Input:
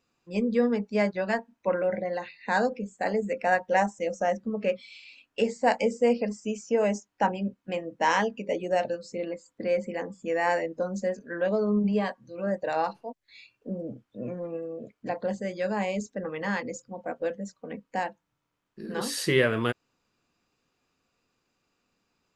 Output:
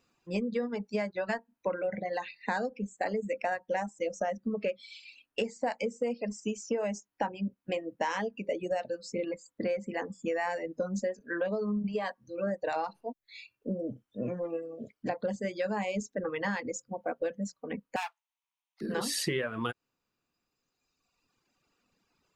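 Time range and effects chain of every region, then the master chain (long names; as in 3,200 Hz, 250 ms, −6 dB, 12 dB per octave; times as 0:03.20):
0:17.96–0:18.81: lower of the sound and its delayed copy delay 0.31 ms + Butterworth high-pass 780 Hz 48 dB per octave
whole clip: reverb reduction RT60 1.7 s; downward compressor 10 to 1, threshold −31 dBFS; level +3 dB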